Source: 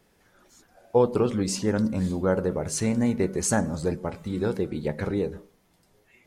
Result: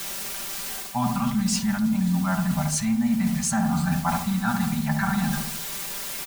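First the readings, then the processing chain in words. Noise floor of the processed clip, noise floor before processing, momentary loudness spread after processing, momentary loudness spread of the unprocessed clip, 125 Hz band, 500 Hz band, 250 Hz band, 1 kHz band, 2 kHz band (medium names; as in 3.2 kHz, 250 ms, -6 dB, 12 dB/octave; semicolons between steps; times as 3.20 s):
-33 dBFS, -64 dBFS, 6 LU, 7 LU, +3.5 dB, -15.5 dB, +4.0 dB, +6.5 dB, +6.5 dB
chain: Chebyshev band-stop 250–670 Hz, order 4; time-frequency box 3.62–5.44 s, 650–1800 Hz +8 dB; filtered feedback delay 72 ms, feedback 54%, low-pass 1 kHz, level -5 dB; in parallel at -5 dB: word length cut 6-bit, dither triangular; on the sum: comb 5.1 ms, depth 89%; reverse; compression 6:1, threshold -27 dBFS, peak gain reduction 14.5 dB; reverse; trim +6 dB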